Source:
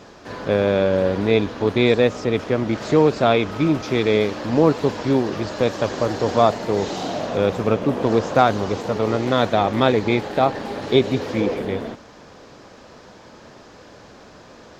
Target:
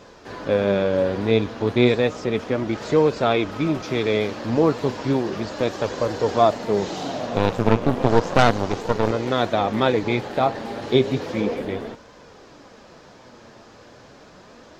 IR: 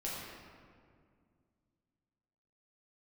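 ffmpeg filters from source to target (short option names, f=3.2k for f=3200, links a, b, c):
-filter_complex "[0:a]flanger=delay=1.9:depth=7:regen=63:speed=0.33:shape=sinusoidal,asettb=1/sr,asplit=3[a][b][c];[a]atrim=end=7.364[d];[b]atrim=start=7.36:end=9.11,asetpts=PTS-STARTPTS,afade=t=in:d=0.004:c=qsin,afade=t=out:st=1.746:d=0.004:c=qsin,aeval=exprs='0.562*(cos(1*acos(clip(val(0)/0.562,-1,1)))-cos(1*PI/2))+0.141*(cos(6*acos(clip(val(0)/0.562,-1,1)))-cos(6*PI/2))':c=same[e];[c]atrim=start=9.106[f];[d][e]acrossfade=d=0.004:c1=hsin:c2=qsin[g];[g][f]acrossfade=d=0.004:c1=qsin:c2=hsin,volume=2dB"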